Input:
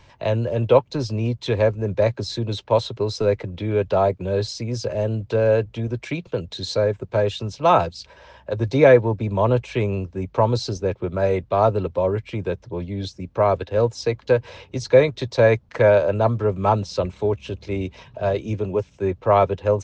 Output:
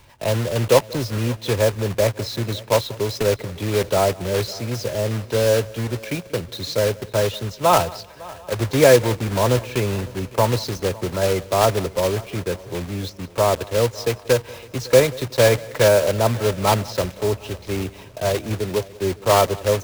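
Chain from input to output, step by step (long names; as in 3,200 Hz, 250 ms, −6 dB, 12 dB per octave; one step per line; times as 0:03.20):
one scale factor per block 3 bits
echo machine with several playback heads 185 ms, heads first and third, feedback 45%, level −22 dB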